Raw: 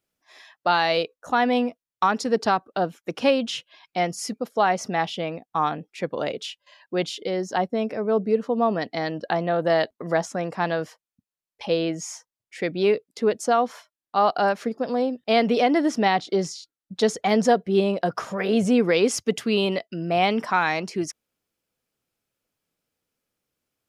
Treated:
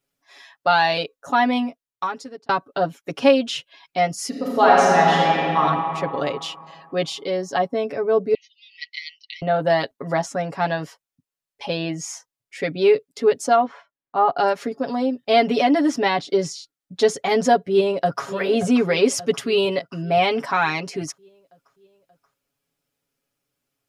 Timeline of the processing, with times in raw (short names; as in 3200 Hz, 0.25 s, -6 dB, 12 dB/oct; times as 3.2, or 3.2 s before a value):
1.48–2.49 fade out
4.28–5.59 reverb throw, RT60 2.6 s, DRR -5 dB
8.34–9.42 brick-wall FIR band-pass 1900–6600 Hz
13.55–14.36 LPF 2600 Hz -> 1500 Hz
17.7–18.27 echo throw 0.58 s, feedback 60%, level -12.5 dB
whole clip: comb 7.2 ms, depth 87%